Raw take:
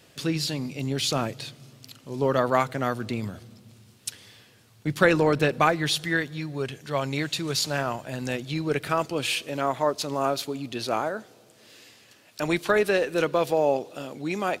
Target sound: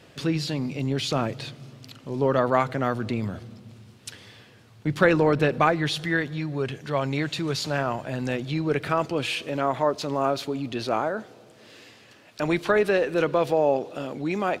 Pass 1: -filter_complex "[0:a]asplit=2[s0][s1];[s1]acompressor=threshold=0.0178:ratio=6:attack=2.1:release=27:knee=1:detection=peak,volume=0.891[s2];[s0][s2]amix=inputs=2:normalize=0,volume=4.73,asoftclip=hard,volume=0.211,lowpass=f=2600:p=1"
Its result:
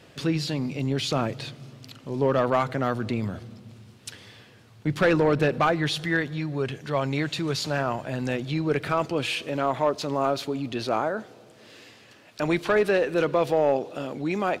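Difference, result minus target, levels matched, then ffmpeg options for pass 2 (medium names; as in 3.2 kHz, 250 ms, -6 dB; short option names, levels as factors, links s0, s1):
overload inside the chain: distortion +32 dB
-filter_complex "[0:a]asplit=2[s0][s1];[s1]acompressor=threshold=0.0178:ratio=6:attack=2.1:release=27:knee=1:detection=peak,volume=0.891[s2];[s0][s2]amix=inputs=2:normalize=0,volume=1.88,asoftclip=hard,volume=0.531,lowpass=f=2600:p=1"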